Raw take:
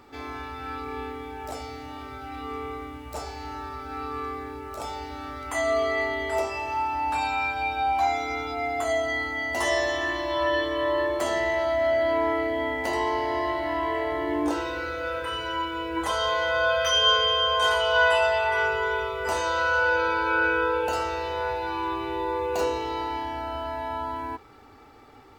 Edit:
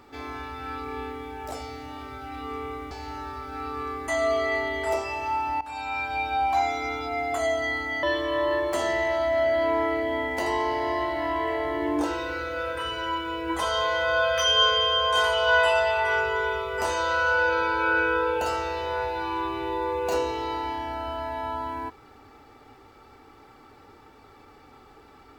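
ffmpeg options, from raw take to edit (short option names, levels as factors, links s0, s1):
-filter_complex "[0:a]asplit=5[s0][s1][s2][s3][s4];[s0]atrim=end=2.912[s5];[s1]atrim=start=3.278:end=4.452[s6];[s2]atrim=start=5.538:end=7.07,asetpts=PTS-STARTPTS,afade=t=out:st=1.528:d=0.004:c=hsin:silence=0.133352[s7];[s3]atrim=start=7.07:end=9.492,asetpts=PTS-STARTPTS,afade=t=in:d=0.76:c=qsin:silence=0.133352[s8];[s4]atrim=start=10.498[s9];[s5][s6]acrossfade=d=0.004:c1=hsin:c2=hsin[s10];[s7][s8]concat=n=2:v=0:a=1[s11];[s10][s11]acrossfade=d=0.004:c1=hsin:c2=hsin[s12];[s12][s9]acrossfade=d=0.004:c1=hsin:c2=hsin"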